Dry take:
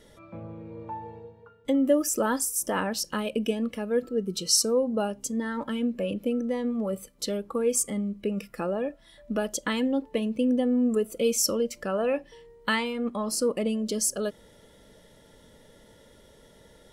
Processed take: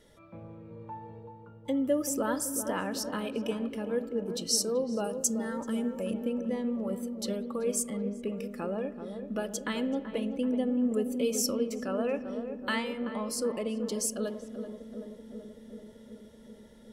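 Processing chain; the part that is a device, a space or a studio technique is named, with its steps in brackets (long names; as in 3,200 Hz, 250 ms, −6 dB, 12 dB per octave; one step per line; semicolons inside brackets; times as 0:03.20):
0:05.04–0:06.14: high shelf with overshoot 4,800 Hz +9.5 dB, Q 1.5
dub delay into a spring reverb (feedback echo with a low-pass in the loop 382 ms, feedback 81%, low-pass 880 Hz, level −7.5 dB; spring reverb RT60 1.6 s, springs 57 ms, chirp 45 ms, DRR 15.5 dB)
level −5.5 dB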